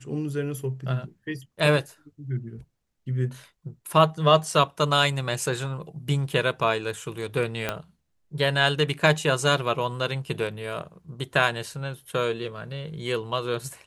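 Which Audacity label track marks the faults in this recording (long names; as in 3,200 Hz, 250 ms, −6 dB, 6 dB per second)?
7.690000	7.690000	click −11 dBFS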